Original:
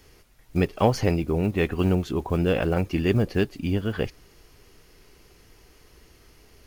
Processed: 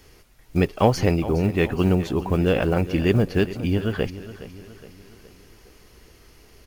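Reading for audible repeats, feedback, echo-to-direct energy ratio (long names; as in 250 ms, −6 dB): 4, 49%, −14.0 dB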